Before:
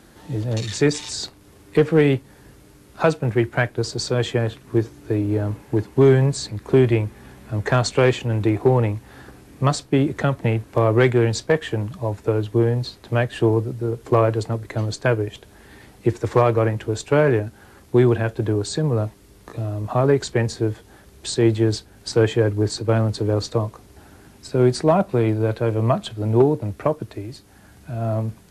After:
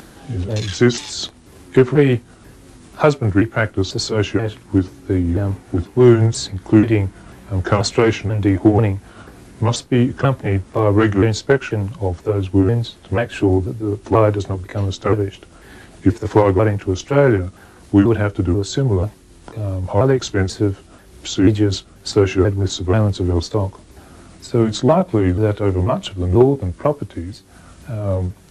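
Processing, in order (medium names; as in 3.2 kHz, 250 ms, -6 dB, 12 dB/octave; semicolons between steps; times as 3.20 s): sawtooth pitch modulation -4 st, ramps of 488 ms; upward compressor, threshold -40 dBFS; trim +4.5 dB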